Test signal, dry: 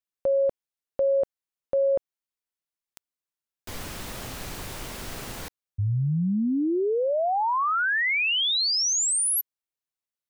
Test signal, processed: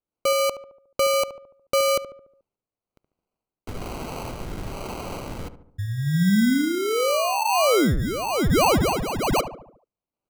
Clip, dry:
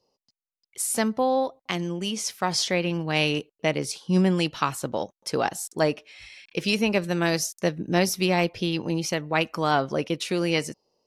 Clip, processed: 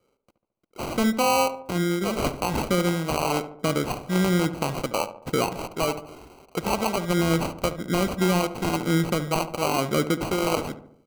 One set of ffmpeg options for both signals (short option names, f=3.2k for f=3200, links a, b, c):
-filter_complex "[0:a]acrossover=split=580[a][b];[a]aeval=exprs='val(0)*(1-0.7/2+0.7/2*cos(2*PI*1.1*n/s))':c=same[c];[b]aeval=exprs='val(0)*(1-0.7/2-0.7/2*cos(2*PI*1.1*n/s))':c=same[d];[c][d]amix=inputs=2:normalize=0,alimiter=limit=-19.5dB:level=0:latency=1:release=93,acrusher=samples=25:mix=1:aa=0.000001,asplit=2[e][f];[f]adelay=72,lowpass=f=1.4k:p=1,volume=-11dB,asplit=2[g][h];[h]adelay=72,lowpass=f=1.4k:p=1,volume=0.54,asplit=2[i][j];[j]adelay=72,lowpass=f=1.4k:p=1,volume=0.54,asplit=2[k][l];[l]adelay=72,lowpass=f=1.4k:p=1,volume=0.54,asplit=2[m][n];[n]adelay=72,lowpass=f=1.4k:p=1,volume=0.54,asplit=2[o][p];[p]adelay=72,lowpass=f=1.4k:p=1,volume=0.54[q];[e][g][i][k][m][o][q]amix=inputs=7:normalize=0,volume=6.5dB"